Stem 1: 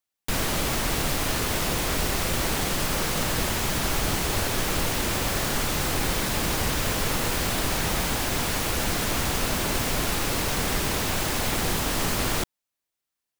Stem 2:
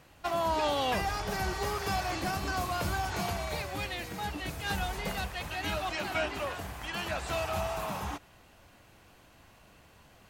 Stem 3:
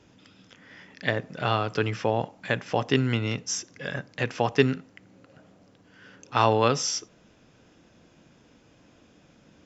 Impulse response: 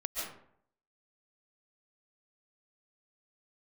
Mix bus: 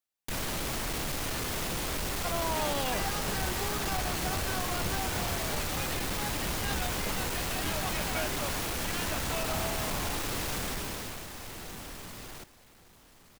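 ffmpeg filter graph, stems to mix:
-filter_complex "[0:a]asoftclip=type=hard:threshold=-26dB,volume=-4.5dB,afade=t=out:st=10.58:d=0.7:silence=0.266073,asplit=2[a][b];[b]volume=-13dB[c];[1:a]adelay=2000,volume=-4dB[d];[c]aecho=0:1:1170:1[e];[a][d][e]amix=inputs=3:normalize=0"

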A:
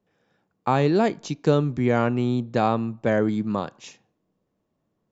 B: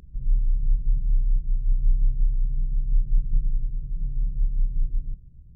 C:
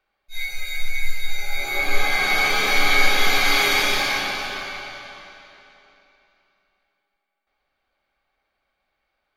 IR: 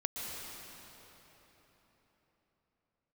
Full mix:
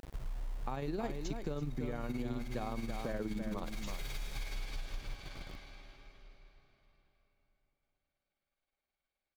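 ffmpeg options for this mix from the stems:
-filter_complex "[0:a]acrusher=bits=10:mix=0:aa=0.000001,volume=-0.5dB,asplit=2[a][b];[b]volume=-14.5dB[c];[1:a]acompressor=threshold=-24dB:ratio=8,acrusher=bits=6:mix=0:aa=0.000001,volume=-7dB,asplit=2[d][e];[e]volume=-14dB[f];[2:a]equalizer=f=1.1k:w=0.58:g=-7,aeval=exprs='(tanh(31.6*val(0)+0.65)-tanh(0.65))/31.6':c=same,adelay=350,volume=-11dB,asplit=2[g][h];[h]volume=-7dB[i];[a][g]amix=inputs=2:normalize=0,tremolo=f=19:d=0.69,alimiter=limit=-17.5dB:level=0:latency=1:release=32,volume=0dB[j];[3:a]atrim=start_sample=2205[k];[f][i]amix=inputs=2:normalize=0[l];[l][k]afir=irnorm=-1:irlink=0[m];[c]aecho=0:1:330:1[n];[d][j][m][n]amix=inputs=4:normalize=0,acompressor=threshold=-38dB:ratio=3"

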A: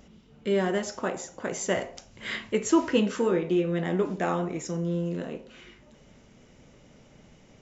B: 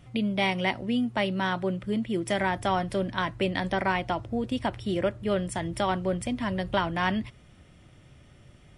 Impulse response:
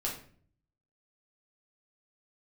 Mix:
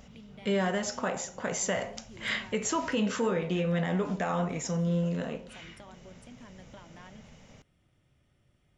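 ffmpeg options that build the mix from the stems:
-filter_complex "[0:a]equalizer=f=340:w=3.6:g=-14,volume=2.5dB[a];[1:a]acompressor=threshold=-34dB:ratio=4,volume=-15.5dB[b];[a][b]amix=inputs=2:normalize=0,alimiter=limit=-20dB:level=0:latency=1:release=73"

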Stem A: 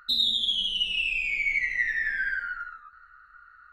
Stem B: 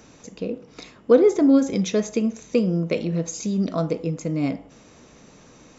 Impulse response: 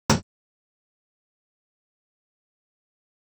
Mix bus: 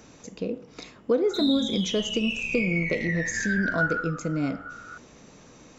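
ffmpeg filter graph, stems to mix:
-filter_complex "[0:a]acompressor=threshold=-32dB:ratio=5,adelay=1250,volume=-3dB,asplit=2[a][b];[b]volume=-9.5dB[c];[1:a]acompressor=threshold=-24dB:ratio=2,volume=-1dB[d];[2:a]atrim=start_sample=2205[e];[c][e]afir=irnorm=-1:irlink=0[f];[a][d][f]amix=inputs=3:normalize=0"

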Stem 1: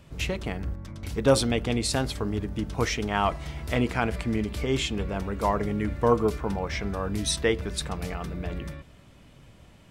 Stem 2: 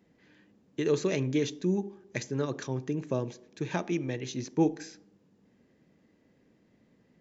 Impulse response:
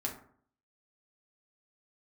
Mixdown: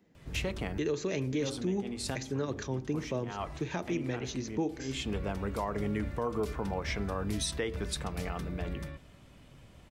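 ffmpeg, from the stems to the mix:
-filter_complex "[0:a]adelay=150,volume=-3.5dB,asplit=2[a][b];[b]volume=-21dB[c];[1:a]volume=-1dB,asplit=2[d][e];[e]apad=whole_len=443295[f];[a][f]sidechaincompress=threshold=-53dB:ratio=4:attack=5:release=201[g];[2:a]atrim=start_sample=2205[h];[c][h]afir=irnorm=-1:irlink=0[i];[g][d][i]amix=inputs=3:normalize=0,acrossover=split=360|3000[j][k][l];[j]acompressor=threshold=-29dB:ratio=6[m];[m][k][l]amix=inputs=3:normalize=0,alimiter=limit=-22.5dB:level=0:latency=1:release=112"

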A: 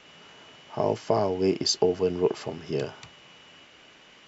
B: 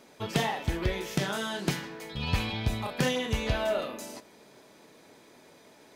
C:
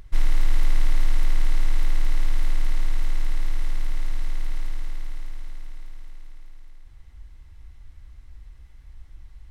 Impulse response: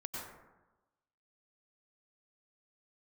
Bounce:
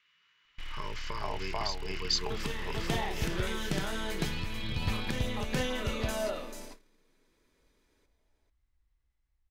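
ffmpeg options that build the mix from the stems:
-filter_complex "[0:a]equalizer=f=250:t=o:w=1:g=-10,equalizer=f=500:t=o:w=1:g=-9,equalizer=f=1k:t=o:w=1:g=7,equalizer=f=2k:t=o:w=1:g=11,equalizer=f=4k:t=o:w=1:g=8,volume=-7dB,asplit=2[a][b];[b]volume=-4.5dB[c];[1:a]adelay=2100,volume=3dB,asplit=2[d][e];[e]volume=-8dB[f];[2:a]lowshelf=f=170:g=-6.5,dynaudnorm=f=270:g=7:m=11dB,volume=19.5dB,asoftclip=hard,volume=-19.5dB,adelay=450,volume=-15.5dB[g];[a][d]amix=inputs=2:normalize=0,asuperstop=centerf=730:order=4:qfactor=1.6,acompressor=threshold=-36dB:ratio=5,volume=0dB[h];[c][f]amix=inputs=2:normalize=0,aecho=0:1:440:1[i];[g][h][i]amix=inputs=3:normalize=0,agate=range=-20dB:threshold=-43dB:ratio=16:detection=peak"

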